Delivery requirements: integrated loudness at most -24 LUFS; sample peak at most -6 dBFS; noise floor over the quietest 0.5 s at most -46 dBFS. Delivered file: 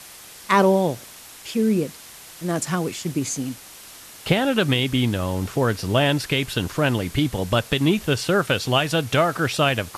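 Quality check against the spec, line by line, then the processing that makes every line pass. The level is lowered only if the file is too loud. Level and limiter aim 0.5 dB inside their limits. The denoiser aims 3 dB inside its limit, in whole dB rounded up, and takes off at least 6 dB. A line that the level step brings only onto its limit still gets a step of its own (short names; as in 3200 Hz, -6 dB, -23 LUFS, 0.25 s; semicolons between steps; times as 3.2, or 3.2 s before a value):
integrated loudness -22.0 LUFS: fail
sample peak -4.0 dBFS: fail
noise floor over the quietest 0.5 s -43 dBFS: fail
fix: denoiser 6 dB, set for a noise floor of -43 dBFS; gain -2.5 dB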